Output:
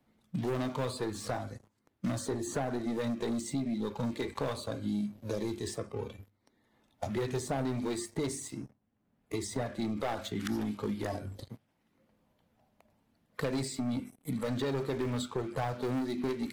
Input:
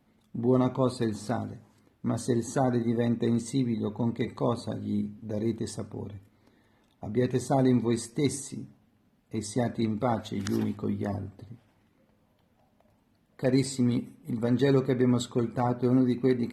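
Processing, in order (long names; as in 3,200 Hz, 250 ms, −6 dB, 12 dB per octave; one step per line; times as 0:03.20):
mains-hum notches 50/100/150/200/250/300/350/400 Hz
leveller curve on the samples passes 3
downward compressor 2 to 1, threshold −25 dBFS, peak gain reduction 5.5 dB
noise reduction from a noise print of the clip's start 11 dB
multiband upward and downward compressor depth 70%
level −8 dB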